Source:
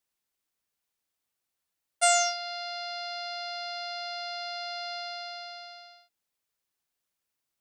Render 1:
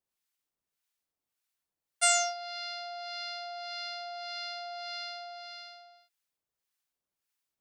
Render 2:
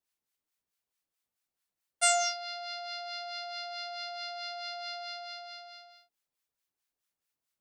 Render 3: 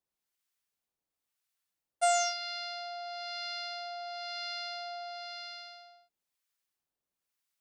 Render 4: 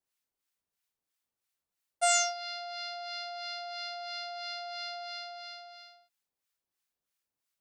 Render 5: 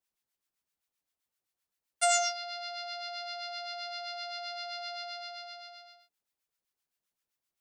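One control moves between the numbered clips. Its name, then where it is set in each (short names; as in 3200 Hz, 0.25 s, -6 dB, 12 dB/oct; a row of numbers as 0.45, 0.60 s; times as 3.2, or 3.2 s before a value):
harmonic tremolo, rate: 1.7, 4.6, 1, 3, 7.7 Hz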